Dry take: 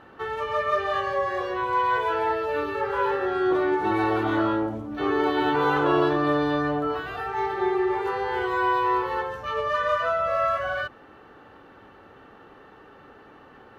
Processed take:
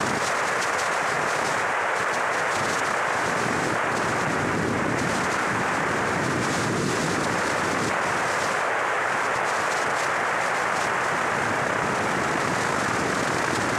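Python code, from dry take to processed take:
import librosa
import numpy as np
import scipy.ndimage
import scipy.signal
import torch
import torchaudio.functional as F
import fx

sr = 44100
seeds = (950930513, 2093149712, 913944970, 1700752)

p1 = fx.schmitt(x, sr, flips_db=-38.0, at=(6.42, 7.52))
p2 = p1 + fx.echo_split(p1, sr, split_hz=620.0, low_ms=486, high_ms=137, feedback_pct=52, wet_db=-7.5, dry=0)
p3 = fx.mod_noise(p2, sr, seeds[0], snr_db=12)
p4 = fx.high_shelf(p3, sr, hz=3500.0, db=-10.5)
p5 = fx.fixed_phaser(p4, sr, hz=2100.0, stages=8)
p6 = p5 + 10.0 ** (-17.0 / 20.0) * np.pad(p5, (int(582 * sr / 1000.0), 0))[:len(p5)]
p7 = fx.noise_vocoder(p6, sr, seeds[1], bands=3)
p8 = fx.env_flatten(p7, sr, amount_pct=100)
y = p8 * 10.0 ** (-4.0 / 20.0)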